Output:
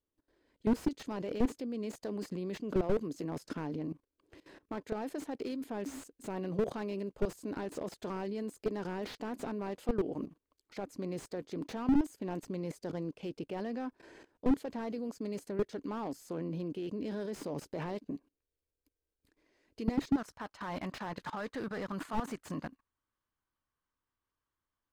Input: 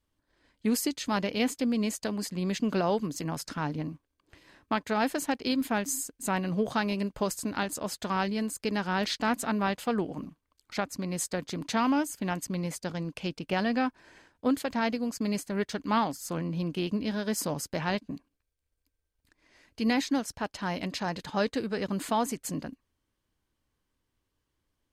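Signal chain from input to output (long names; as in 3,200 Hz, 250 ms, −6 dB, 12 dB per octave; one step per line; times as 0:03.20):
parametric band 400 Hz +12 dB 1.3 octaves, from 0:20.17 1,200 Hz
output level in coarse steps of 18 dB
slew-rate limiting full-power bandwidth 21 Hz
level −1 dB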